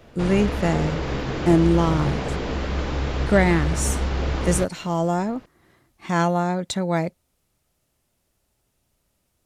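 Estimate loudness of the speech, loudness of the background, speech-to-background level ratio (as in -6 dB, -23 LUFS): -23.0 LUFS, -26.5 LUFS, 3.5 dB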